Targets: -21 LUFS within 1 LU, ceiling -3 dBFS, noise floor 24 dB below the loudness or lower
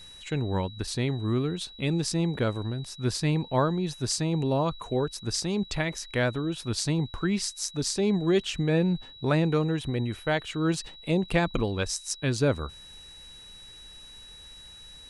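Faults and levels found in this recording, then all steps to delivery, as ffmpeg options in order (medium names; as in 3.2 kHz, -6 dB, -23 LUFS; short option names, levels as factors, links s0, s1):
steady tone 3.9 kHz; tone level -46 dBFS; loudness -28.0 LUFS; peak level -11.0 dBFS; loudness target -21.0 LUFS
-> -af "bandreject=f=3900:w=30"
-af "volume=2.24"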